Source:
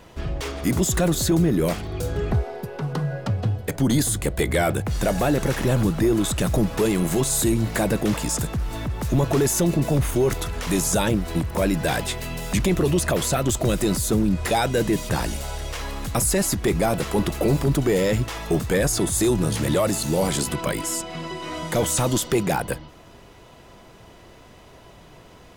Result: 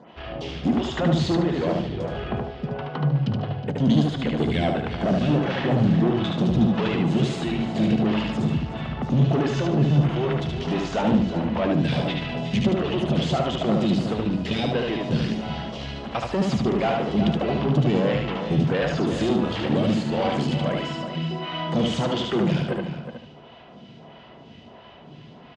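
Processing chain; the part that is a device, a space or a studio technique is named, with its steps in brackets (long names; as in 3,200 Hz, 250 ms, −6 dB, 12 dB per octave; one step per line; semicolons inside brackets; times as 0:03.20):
vibe pedal into a guitar amplifier (phaser with staggered stages 1.5 Hz; tube saturation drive 22 dB, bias 0.45; loudspeaker in its box 77–4,600 Hz, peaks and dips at 150 Hz +8 dB, 230 Hz +9 dB, 730 Hz +5 dB, 3,000 Hz +8 dB)
slap from a distant wall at 63 metres, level −9 dB
repeating echo 74 ms, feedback 32%, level −3 dB
level +1.5 dB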